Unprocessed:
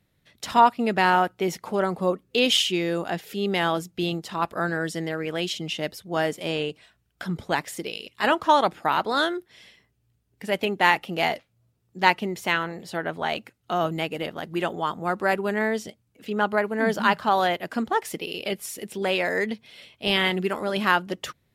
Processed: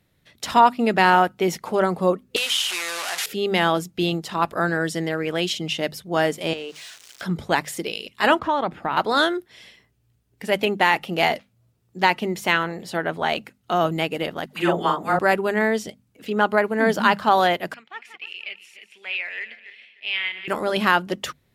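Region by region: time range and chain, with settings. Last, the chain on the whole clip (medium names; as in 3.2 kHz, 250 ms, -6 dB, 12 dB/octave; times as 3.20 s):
2.36–3.26 s: one-bit delta coder 64 kbps, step -21.5 dBFS + high-pass 1.1 kHz + compression 2:1, threshold -26 dBFS
6.53–7.22 s: zero-crossing glitches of -30 dBFS + three-band isolator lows -13 dB, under 220 Hz, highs -22 dB, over 7.3 kHz + compression 3:1, threshold -35 dBFS
8.39–8.97 s: tone controls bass +6 dB, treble -13 dB + compression 2:1, threshold -28 dBFS
14.46–15.19 s: doubling 41 ms -4 dB + phase dispersion lows, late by 107 ms, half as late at 530 Hz
17.74–20.48 s: backward echo that repeats 151 ms, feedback 47%, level -12 dB + band-pass filter 2.4 kHz, Q 4.6
whole clip: hum notches 50/100/150/200/250 Hz; loudness maximiser +7 dB; trim -3 dB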